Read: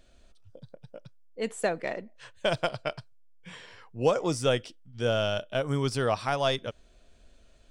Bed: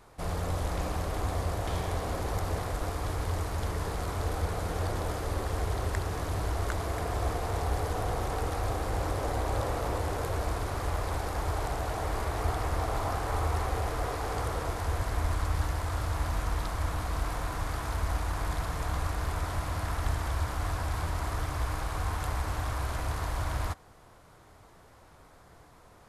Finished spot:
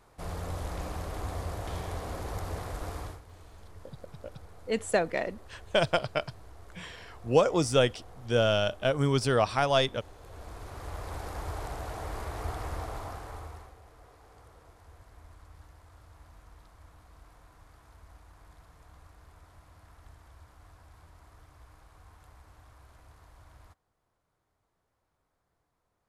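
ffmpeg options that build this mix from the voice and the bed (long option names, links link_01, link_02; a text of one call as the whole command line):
ffmpeg -i stem1.wav -i stem2.wav -filter_complex "[0:a]adelay=3300,volume=2dB[link_01];[1:a]volume=10.5dB,afade=type=out:start_time=2.99:duration=0.22:silence=0.158489,afade=type=in:start_time=10.2:duration=1.07:silence=0.177828,afade=type=out:start_time=12.71:duration=1.04:silence=0.125893[link_02];[link_01][link_02]amix=inputs=2:normalize=0" out.wav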